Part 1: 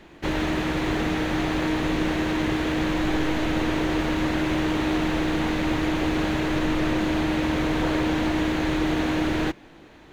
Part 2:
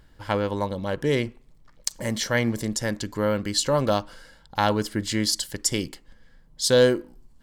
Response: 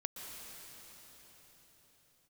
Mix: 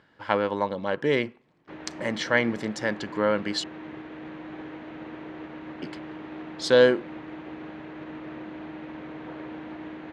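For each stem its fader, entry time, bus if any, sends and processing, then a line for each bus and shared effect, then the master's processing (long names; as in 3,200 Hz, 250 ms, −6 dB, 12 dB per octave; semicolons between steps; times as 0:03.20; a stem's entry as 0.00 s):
−13.5 dB, 1.45 s, no send, expander for the loud parts 1.5 to 1, over −37 dBFS
+2.5 dB, 0.00 s, muted 0:03.64–0:05.82, no send, spectral tilt +2 dB per octave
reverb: not used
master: band-pass filter 150–2,300 Hz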